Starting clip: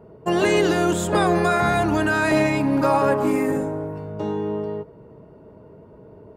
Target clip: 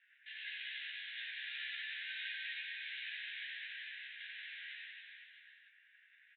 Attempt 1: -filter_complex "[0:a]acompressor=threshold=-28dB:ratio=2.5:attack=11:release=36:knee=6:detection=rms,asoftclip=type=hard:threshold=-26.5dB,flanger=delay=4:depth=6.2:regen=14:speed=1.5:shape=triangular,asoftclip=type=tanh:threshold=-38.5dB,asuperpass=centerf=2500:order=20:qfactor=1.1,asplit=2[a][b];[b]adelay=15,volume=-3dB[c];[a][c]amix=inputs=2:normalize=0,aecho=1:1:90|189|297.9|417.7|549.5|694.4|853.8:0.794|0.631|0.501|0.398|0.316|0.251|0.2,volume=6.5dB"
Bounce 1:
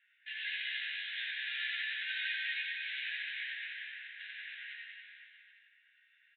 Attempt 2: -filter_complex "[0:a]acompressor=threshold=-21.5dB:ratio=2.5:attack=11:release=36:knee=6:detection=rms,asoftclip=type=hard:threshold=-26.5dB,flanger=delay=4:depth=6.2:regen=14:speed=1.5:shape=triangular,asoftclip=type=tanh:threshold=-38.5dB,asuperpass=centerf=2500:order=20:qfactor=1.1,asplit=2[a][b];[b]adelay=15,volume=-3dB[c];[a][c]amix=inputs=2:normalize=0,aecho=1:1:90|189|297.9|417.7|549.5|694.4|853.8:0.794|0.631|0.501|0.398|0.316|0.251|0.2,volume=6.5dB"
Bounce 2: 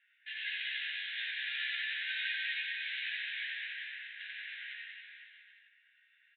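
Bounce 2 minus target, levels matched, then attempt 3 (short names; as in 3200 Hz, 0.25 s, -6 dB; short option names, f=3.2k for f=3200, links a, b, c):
soft clip: distortion -4 dB
-filter_complex "[0:a]acompressor=threshold=-21.5dB:ratio=2.5:attack=11:release=36:knee=6:detection=rms,asoftclip=type=hard:threshold=-26.5dB,flanger=delay=4:depth=6.2:regen=14:speed=1.5:shape=triangular,asoftclip=type=tanh:threshold=-47dB,asuperpass=centerf=2500:order=20:qfactor=1.1,asplit=2[a][b];[b]adelay=15,volume=-3dB[c];[a][c]amix=inputs=2:normalize=0,aecho=1:1:90|189|297.9|417.7|549.5|694.4|853.8:0.794|0.631|0.501|0.398|0.316|0.251|0.2,volume=6.5dB"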